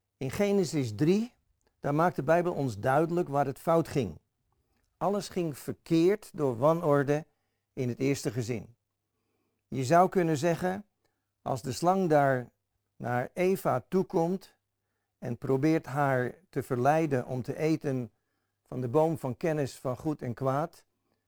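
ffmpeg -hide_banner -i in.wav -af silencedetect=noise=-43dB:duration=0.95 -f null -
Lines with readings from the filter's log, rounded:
silence_start: 8.65
silence_end: 9.72 | silence_duration: 1.07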